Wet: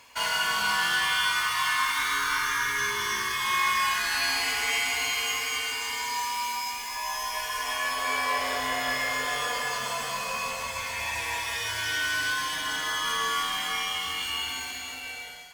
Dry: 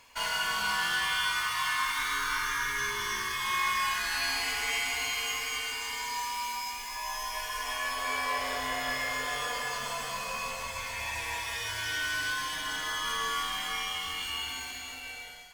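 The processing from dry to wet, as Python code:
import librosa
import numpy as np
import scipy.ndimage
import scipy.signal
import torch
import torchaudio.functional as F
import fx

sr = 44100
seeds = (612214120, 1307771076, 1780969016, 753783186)

y = fx.highpass(x, sr, hz=81.0, slope=6)
y = F.gain(torch.from_numpy(y), 4.0).numpy()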